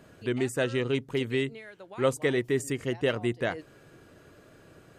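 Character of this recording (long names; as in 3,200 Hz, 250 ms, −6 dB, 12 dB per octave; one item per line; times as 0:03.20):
background noise floor −56 dBFS
spectral slope −5.0 dB per octave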